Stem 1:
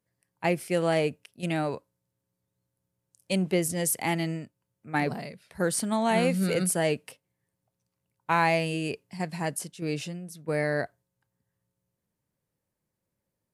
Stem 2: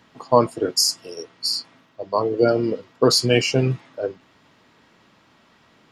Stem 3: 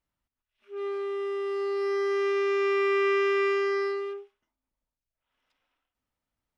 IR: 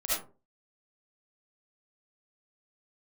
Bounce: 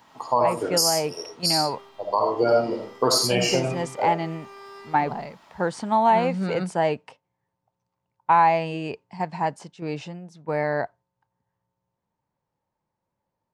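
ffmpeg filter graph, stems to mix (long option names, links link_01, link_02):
-filter_complex "[0:a]lowpass=frequency=7400:width=0.5412,lowpass=frequency=7400:width=1.3066,highshelf=frequency=5500:gain=-9.5,volume=-0.5dB[link_01];[1:a]crystalizer=i=2:c=0,volume=-8.5dB,asplit=3[link_02][link_03][link_04];[link_03]volume=-6.5dB[link_05];[2:a]acrossover=split=190|3000[link_06][link_07][link_08];[link_07]acompressor=threshold=-40dB:ratio=3[link_09];[link_06][link_09][link_08]amix=inputs=3:normalize=0,aeval=exprs='sgn(val(0))*max(abs(val(0))-0.00631,0)':channel_layout=same,alimiter=level_in=17.5dB:limit=-24dB:level=0:latency=1,volume=-17.5dB,adelay=900,volume=-2dB,asplit=2[link_10][link_11];[link_11]volume=-7.5dB[link_12];[link_04]apad=whole_len=329579[link_13];[link_10][link_13]sidechaincompress=threshold=-43dB:ratio=8:attack=16:release=512[link_14];[3:a]atrim=start_sample=2205[link_15];[link_05][link_12]amix=inputs=2:normalize=0[link_16];[link_16][link_15]afir=irnorm=-1:irlink=0[link_17];[link_01][link_02][link_14][link_17]amix=inputs=4:normalize=0,equalizer=frequency=890:width_type=o:width=0.71:gain=14,alimiter=limit=-9.5dB:level=0:latency=1:release=256"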